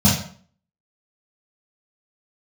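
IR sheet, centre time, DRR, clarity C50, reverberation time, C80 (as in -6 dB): 43 ms, -7.5 dB, 3.5 dB, 0.50 s, 8.5 dB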